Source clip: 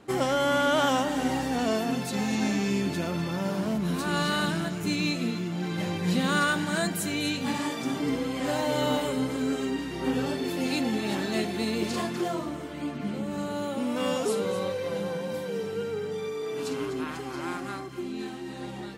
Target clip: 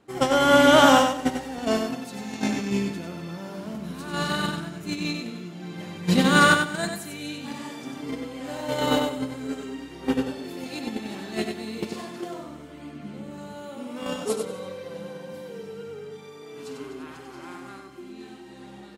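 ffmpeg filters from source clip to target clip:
ffmpeg -i in.wav -af "agate=range=-16dB:threshold=-24dB:ratio=16:detection=peak,aecho=1:1:95|190|285:0.531|0.122|0.0281,volume=8.5dB" out.wav

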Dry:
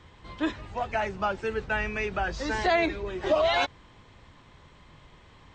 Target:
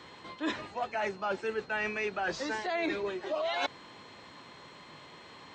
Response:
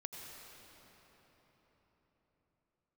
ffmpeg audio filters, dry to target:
-af "highpass=230,areverse,acompressor=threshold=-35dB:ratio=12,areverse,aeval=exprs='val(0)+0.000562*sin(2*PI*4200*n/s)':channel_layout=same,volume=5.5dB"

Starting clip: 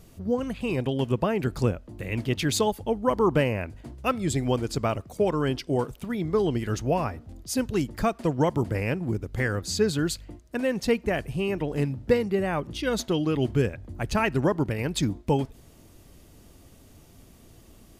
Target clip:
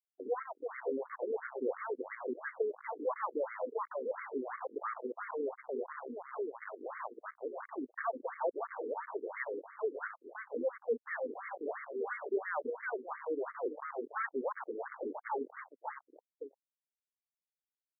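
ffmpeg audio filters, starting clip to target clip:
ffmpeg -i in.wav -filter_complex "[0:a]agate=range=-8dB:threshold=-39dB:ratio=16:detection=peak,bass=frequency=250:gain=-5,treble=frequency=4000:gain=2,aecho=1:1:558|1116|1674|2232:0.398|0.127|0.0408|0.013,volume=19.5dB,asoftclip=hard,volume=-19.5dB,aresample=11025,aresample=44100,alimiter=level_in=3dB:limit=-24dB:level=0:latency=1:release=210,volume=-3dB,asplit=3[link_01][link_02][link_03];[link_01]afade=type=out:start_time=5.58:duration=0.02[link_04];[link_02]acompressor=threshold=-36dB:ratio=2.5,afade=type=in:start_time=5.58:duration=0.02,afade=type=out:start_time=7.62:duration=0.02[link_05];[link_03]afade=type=in:start_time=7.62:duration=0.02[link_06];[link_04][link_05][link_06]amix=inputs=3:normalize=0,equalizer=frequency=300:width=3.8:gain=-7.5,bandreject=frequency=60:width_type=h:width=6,bandreject=frequency=120:width_type=h:width=6,bandreject=frequency=180:width_type=h:width=6,acrusher=bits=5:mix=0:aa=0.5,afftfilt=real='re*between(b*sr/1024,330*pow(1600/330,0.5+0.5*sin(2*PI*2.9*pts/sr))/1.41,330*pow(1600/330,0.5+0.5*sin(2*PI*2.9*pts/sr))*1.41)':imag='im*between(b*sr/1024,330*pow(1600/330,0.5+0.5*sin(2*PI*2.9*pts/sr))/1.41,330*pow(1600/330,0.5+0.5*sin(2*PI*2.9*pts/sr))*1.41)':win_size=1024:overlap=0.75,volume=4dB" out.wav

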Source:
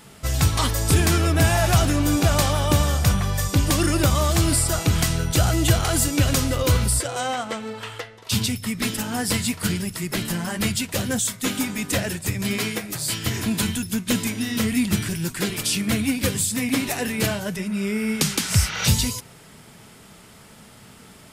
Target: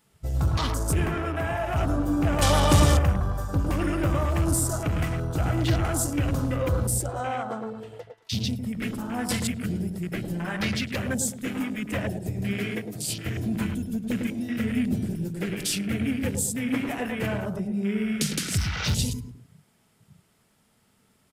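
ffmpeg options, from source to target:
ffmpeg -i in.wav -filter_complex "[0:a]highshelf=frequency=11000:gain=6,asettb=1/sr,asplit=3[link_01][link_02][link_03];[link_01]atrim=end=1.064[link_04];[link_02]atrim=start=1.06:end=1.76,asetpts=PTS-STARTPTS,afade=type=in:duration=0.004:curve=qsin,afade=type=out:start_time=0.696:duration=0.004:curve=qsin,acrossover=split=380|1900[link_05][link_06][link_07];[link_05]acompressor=threshold=-29dB:ratio=4[link_08];[link_06]acompressor=threshold=-24dB:ratio=4[link_09];[link_07]acompressor=threshold=-32dB:ratio=4[link_10];[link_08][link_09][link_10]amix=inputs=3:normalize=0[link_11];[link_03]atrim=start=1.756[link_12];[link_04][link_11]acrossfade=duration=0.004:curve1=hsin:curve2=qsin[link_13];[link_13][link_12]acrossfade=duration=0.004:curve1=qsin:curve2=hsin,asettb=1/sr,asplit=3[link_14][link_15][link_16];[link_14]atrim=end=10.344[link_17];[link_15]atrim=start=10.34:end=11.13,asetpts=PTS-STARTPTS,afade=type=in:duration=0.004:curve=qsin,afade=type=out:start_time=0.786:duration=0.004:curve=qsin,equalizer=frequency=2000:width=1:gain=4.5[link_18];[link_16]atrim=start=11.126[link_19];[link_17][link_18]acrossfade=duration=0.004:curve1=hsin:curve2=qsin[link_20];[link_20][link_19]acrossfade=duration=0.004:curve1=qsin:curve2=hsin,asoftclip=type=tanh:threshold=-14.5dB,asettb=1/sr,asplit=3[link_21][link_22][link_23];[link_21]atrim=end=2.424[link_24];[link_22]atrim=start=2.42:end=2.99,asetpts=PTS-STARTPTS,afade=type=in:duration=0.004:curve=qsin,afade=type=out:start_time=0.566:duration=0.004:curve=qsin,acontrast=66[link_25];[link_23]atrim=start=2.986[link_26];[link_24][link_25]acrossfade=duration=0.004:curve1=hsin:curve2=qsin[link_27];[link_27][link_26]acrossfade=duration=0.004:curve1=qsin:curve2=hsin,asplit=2[link_28][link_29];[link_29]adelay=106,lowpass=frequency=2000:poles=1,volume=-4.5dB,asplit=2[link_30][link_31];[link_31]adelay=106,lowpass=frequency=2000:poles=1,volume=0.4,asplit=2[link_32][link_33];[link_33]adelay=106,lowpass=frequency=2000:poles=1,volume=0.4,asplit=2[link_34][link_35];[link_35]adelay=106,lowpass=frequency=2000:poles=1,volume=0.4,asplit=2[link_36][link_37];[link_37]adelay=106,lowpass=frequency=2000:poles=1,volume=0.4[link_38];[link_28][link_30][link_32][link_34][link_36][link_38]amix=inputs=6:normalize=0,afwtdn=0.0316,volume=-3.5dB" out.wav

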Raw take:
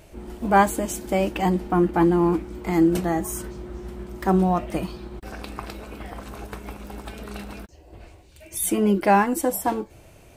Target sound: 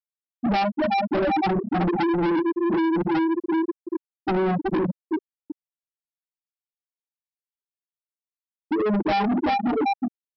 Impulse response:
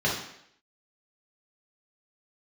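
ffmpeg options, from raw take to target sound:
-filter_complex "[0:a]asplit=2[link_01][link_02];[link_02]alimiter=limit=-14.5dB:level=0:latency=1:release=142,volume=1.5dB[link_03];[link_01][link_03]amix=inputs=2:normalize=0,aecho=1:1:372|744|1116|1488|1860:0.501|0.19|0.0724|0.0275|0.0105[link_04];[1:a]atrim=start_sample=2205,asetrate=88200,aresample=44100[link_05];[link_04][link_05]afir=irnorm=-1:irlink=0,afftfilt=real='re*gte(hypot(re,im),2.24)':imag='im*gte(hypot(re,im),2.24)':win_size=1024:overlap=0.75,acompressor=threshold=-10dB:ratio=4,aresample=11025,asoftclip=type=tanh:threshold=-20dB,aresample=44100"

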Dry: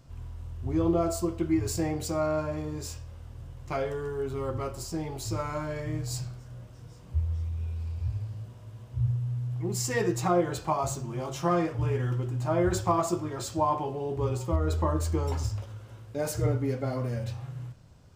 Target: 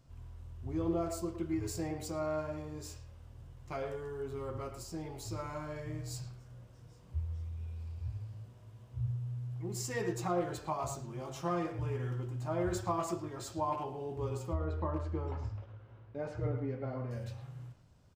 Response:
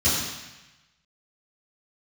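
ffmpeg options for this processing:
-filter_complex "[0:a]asettb=1/sr,asplit=3[link_01][link_02][link_03];[link_01]atrim=end=14.534[link_04];[link_02]atrim=start=14.53:end=17.11,asetpts=PTS-STARTPTS,afade=type=in:duration=0.004:curve=qsin,afade=type=out:start_time=2.576:duration=0.004:curve=qsin,lowpass=2300[link_05];[link_03]atrim=start=17.106[link_06];[link_04][link_05]acrossfade=duration=0.004:curve1=hsin:curve2=qsin[link_07];[link_07][link_06]acrossfade=duration=0.004:curve1=qsin:curve2=hsin,asplit=2[link_08][link_09];[link_09]adelay=110,highpass=300,lowpass=3400,asoftclip=type=hard:threshold=-22.5dB,volume=-8dB[link_10];[link_08][link_10]amix=inputs=2:normalize=0,volume=-8.5dB"

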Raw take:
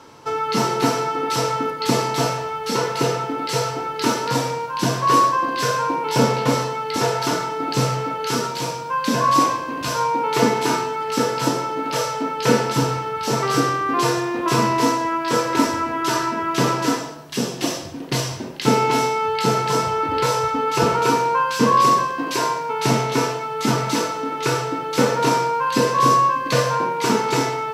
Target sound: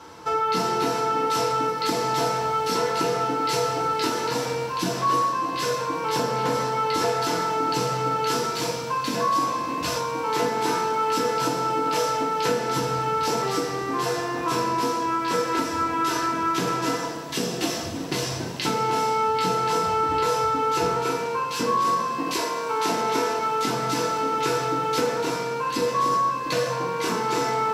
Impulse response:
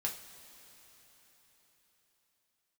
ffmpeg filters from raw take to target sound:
-filter_complex "[0:a]asettb=1/sr,asplit=3[link_01][link_02][link_03];[link_01]atrim=end=22.374[link_04];[link_02]atrim=start=22.37:end=23.39,asetpts=PTS-STARTPTS,afade=type=in:duration=0.004:curve=qsin,afade=type=out:start_time=1.016:duration=0.004:curve=qsin,highpass=frequency=190:width=0.5412,highpass=frequency=190:width=1.3066[link_05];[link_03]atrim=start=23.386[link_06];[link_04][link_05]acrossfade=duration=0.004:curve1=hsin:curve2=qsin[link_07];[link_07][link_06]acrossfade=duration=0.004:curve1=qsin:curve2=hsin,acompressor=threshold=-23dB:ratio=6[link_08];[1:a]atrim=start_sample=2205[link_09];[link_08][link_09]afir=irnorm=-1:irlink=0"

